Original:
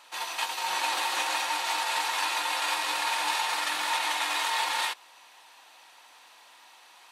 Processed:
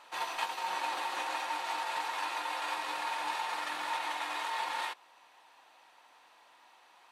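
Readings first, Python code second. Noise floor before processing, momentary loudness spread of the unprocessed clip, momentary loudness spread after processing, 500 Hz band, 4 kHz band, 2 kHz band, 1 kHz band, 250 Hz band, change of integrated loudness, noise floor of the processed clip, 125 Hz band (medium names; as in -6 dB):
-55 dBFS, 3 LU, 1 LU, -3.5 dB, -10.5 dB, -7.5 dB, -4.5 dB, -3.5 dB, -7.5 dB, -62 dBFS, no reading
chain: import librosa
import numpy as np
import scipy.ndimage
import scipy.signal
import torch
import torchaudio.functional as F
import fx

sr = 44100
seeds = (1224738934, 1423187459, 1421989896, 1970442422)

y = fx.rider(x, sr, range_db=10, speed_s=0.5)
y = fx.high_shelf(y, sr, hz=2500.0, db=-11.5)
y = y * librosa.db_to_amplitude(-3.0)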